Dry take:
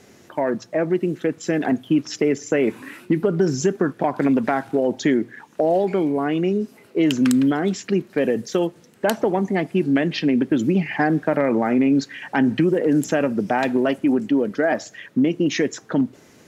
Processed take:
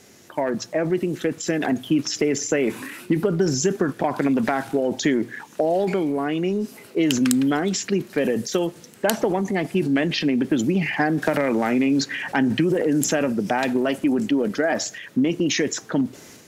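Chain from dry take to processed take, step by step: treble shelf 3.4 kHz +8.5 dB; transient shaper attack +2 dB, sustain +7 dB; 11.22–12.32 s: three bands compressed up and down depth 70%; trim -3 dB

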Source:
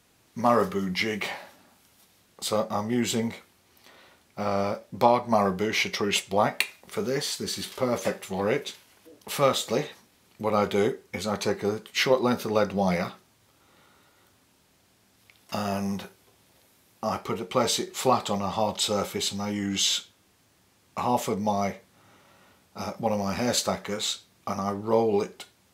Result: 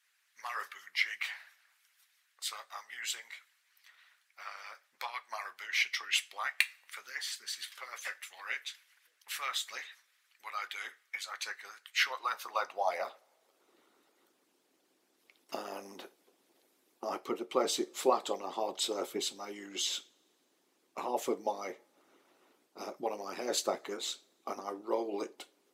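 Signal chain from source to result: harmonic-percussive split harmonic -17 dB; high-pass sweep 1.7 kHz -> 330 Hz, 11.86–13.79 s; two-slope reverb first 0.31 s, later 1.9 s, from -22 dB, DRR 17 dB; trim -6.5 dB

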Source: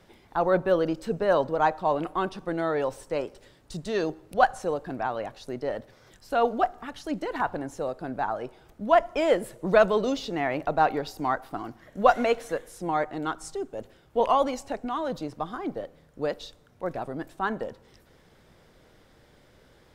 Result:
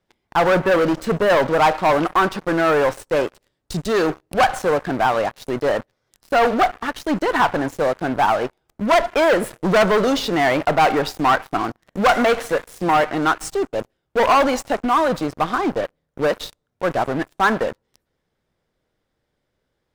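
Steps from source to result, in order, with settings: waveshaping leveller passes 5; dynamic bell 1.4 kHz, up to +6 dB, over -25 dBFS, Q 0.76; trim -7 dB

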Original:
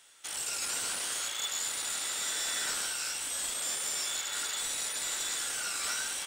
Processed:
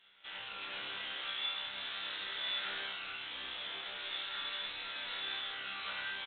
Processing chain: treble shelf 2.2 kHz +10 dB; in parallel at -7.5 dB: companded quantiser 4-bit; on the sum: chord resonator C2 fifth, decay 0.65 s; resampled via 8 kHz; trim +4.5 dB

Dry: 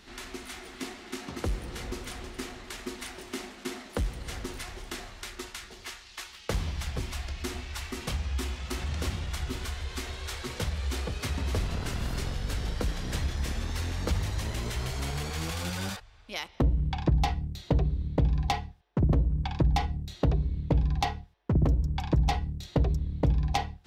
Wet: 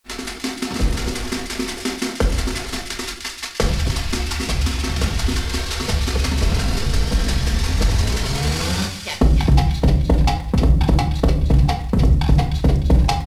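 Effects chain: CVSD coder 64 kbps; gate -43 dBFS, range -56 dB; dynamic bell 4.9 kHz, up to +5 dB, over -57 dBFS, Q 3.2; in parallel at -1.5 dB: gain riding within 4 dB 2 s; on the sum: tempo 1.8×; word length cut 12-bit, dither triangular; on a send: feedback echo behind a high-pass 302 ms, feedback 40%, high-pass 1.8 kHz, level -6.5 dB; on the sum: simulated room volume 880 m³, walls furnished, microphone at 1.6 m; trim +4.5 dB

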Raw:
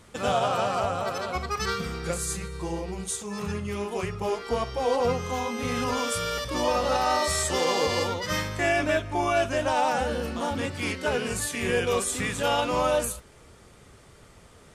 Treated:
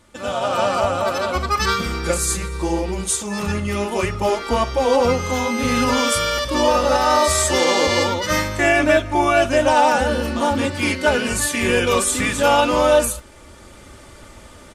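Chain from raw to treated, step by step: comb 3.4 ms, depth 52%; level rider gain up to 11.5 dB; trim -2 dB

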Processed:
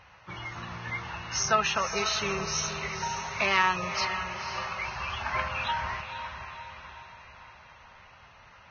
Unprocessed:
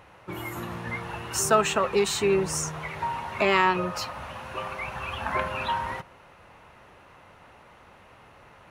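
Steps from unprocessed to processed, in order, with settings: peaking EQ 340 Hz -13.5 dB 1.8 oct; on a send: echo that smears into a reverb 508 ms, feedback 51%, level -8 dB; on the sum: Vorbis 16 kbps 16 kHz

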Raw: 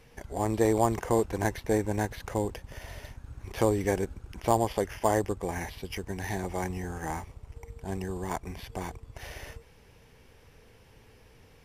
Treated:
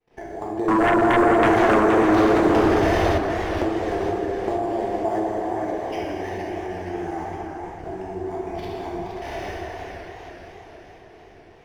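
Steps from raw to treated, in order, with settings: median filter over 5 samples; hum notches 60/120/180/240/300/360/420/480 Hz; expander -50 dBFS; small resonant body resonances 360/690 Hz, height 14 dB, ringing for 45 ms; level held to a coarse grid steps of 21 dB; treble shelf 7.5 kHz -12 dB; plate-style reverb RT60 2.2 s, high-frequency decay 0.8×, DRR -5.5 dB; compression 4:1, threshold -31 dBFS, peak gain reduction 17.5 dB; 0.68–3.18 s: sine folder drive 10 dB, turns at -20 dBFS; bass shelf 120 Hz -5 dB; repeats whose band climbs or falls 196 ms, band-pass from 840 Hz, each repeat 0.7 oct, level -5 dB; modulated delay 467 ms, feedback 58%, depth 140 cents, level -8 dB; trim +6 dB

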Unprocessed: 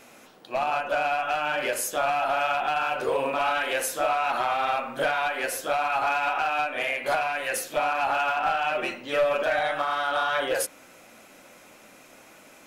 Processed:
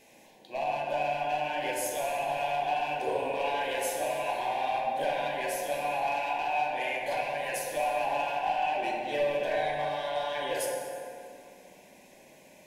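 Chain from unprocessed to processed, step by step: Butterworth band-stop 1.3 kHz, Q 2; on a send: feedback echo behind a low-pass 68 ms, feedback 78%, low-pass 1.1 kHz, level -6.5 dB; on the sum: plate-style reverb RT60 2.2 s, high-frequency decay 0.65×, DRR 0 dB; trim -7.5 dB

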